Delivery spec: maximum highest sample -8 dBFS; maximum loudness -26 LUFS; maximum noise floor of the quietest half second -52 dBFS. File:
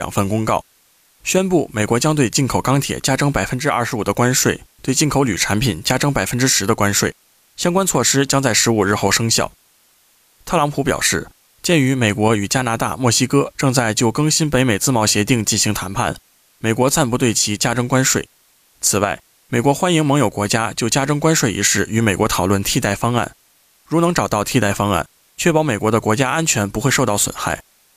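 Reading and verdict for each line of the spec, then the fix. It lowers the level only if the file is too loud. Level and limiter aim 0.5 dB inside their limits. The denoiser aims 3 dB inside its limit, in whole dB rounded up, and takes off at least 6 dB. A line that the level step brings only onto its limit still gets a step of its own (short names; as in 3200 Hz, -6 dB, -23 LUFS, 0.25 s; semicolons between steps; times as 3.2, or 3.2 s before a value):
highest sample -1.5 dBFS: fail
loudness -17.0 LUFS: fail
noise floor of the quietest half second -56 dBFS: OK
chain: gain -9.5 dB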